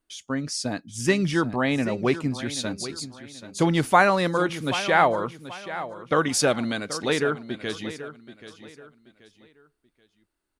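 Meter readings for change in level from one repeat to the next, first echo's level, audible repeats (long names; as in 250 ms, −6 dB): −10.0 dB, −13.5 dB, 3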